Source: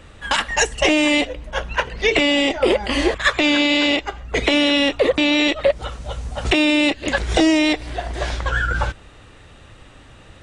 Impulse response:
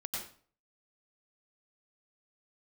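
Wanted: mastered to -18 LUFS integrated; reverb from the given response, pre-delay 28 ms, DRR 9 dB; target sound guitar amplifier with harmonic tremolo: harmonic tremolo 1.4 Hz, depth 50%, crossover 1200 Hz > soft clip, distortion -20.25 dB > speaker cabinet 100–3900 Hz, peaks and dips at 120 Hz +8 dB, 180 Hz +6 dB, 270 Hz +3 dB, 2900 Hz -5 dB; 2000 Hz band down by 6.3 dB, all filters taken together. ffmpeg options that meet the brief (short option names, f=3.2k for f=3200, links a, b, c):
-filter_complex "[0:a]equalizer=f=2k:t=o:g=-6.5,asplit=2[a][b];[1:a]atrim=start_sample=2205,adelay=28[c];[b][c]afir=irnorm=-1:irlink=0,volume=-10.5dB[d];[a][d]amix=inputs=2:normalize=0,acrossover=split=1200[e][f];[e]aeval=exprs='val(0)*(1-0.5/2+0.5/2*cos(2*PI*1.4*n/s))':c=same[g];[f]aeval=exprs='val(0)*(1-0.5/2-0.5/2*cos(2*PI*1.4*n/s))':c=same[h];[g][h]amix=inputs=2:normalize=0,asoftclip=threshold=-11dB,highpass=100,equalizer=f=120:t=q:w=4:g=8,equalizer=f=180:t=q:w=4:g=6,equalizer=f=270:t=q:w=4:g=3,equalizer=f=2.9k:t=q:w=4:g=-5,lowpass=f=3.9k:w=0.5412,lowpass=f=3.9k:w=1.3066,volume=5dB"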